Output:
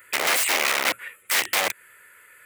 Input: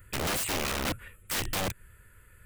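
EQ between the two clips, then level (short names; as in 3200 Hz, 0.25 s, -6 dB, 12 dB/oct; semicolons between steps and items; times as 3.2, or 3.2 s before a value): HPF 550 Hz 12 dB/oct; bell 2100 Hz +7 dB 0.44 oct; +8.5 dB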